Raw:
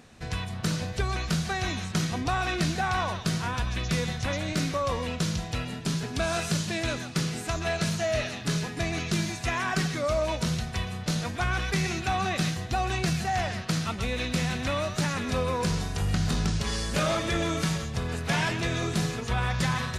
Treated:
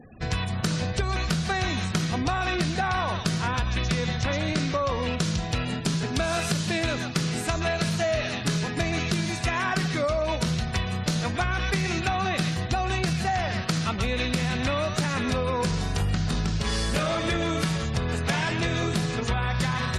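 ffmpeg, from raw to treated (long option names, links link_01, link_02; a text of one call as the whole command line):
ffmpeg -i in.wav -filter_complex "[0:a]asettb=1/sr,asplit=3[link_01][link_02][link_03];[link_01]atrim=end=3.924[link_04];[link_02]atrim=start=3.92:end=5.07,asetpts=PTS-STARTPTS,afade=type=in:duration=0.004:curve=qsin,afade=type=out:start_time=1.146:duration=0.004:curve=qsin,lowpass=8900[link_05];[link_03]atrim=start=5.066[link_06];[link_04][link_05]acrossfade=duration=0.004:curve1=hsin:curve2=qsin[link_07];[link_07][link_06]acrossfade=duration=0.004:curve1=qsin:curve2=hsin,adynamicequalizer=threshold=0.00355:dfrequency=6600:dqfactor=2.4:tfrequency=6600:tqfactor=2.4:attack=5:release=100:ratio=0.375:range=2:mode=cutabove:tftype=bell,acompressor=threshold=-28dB:ratio=16,afftfilt=real='re*gte(hypot(re,im),0.00316)':imag='im*gte(hypot(re,im),0.00316)':win_size=1024:overlap=0.75,volume=6.5dB" out.wav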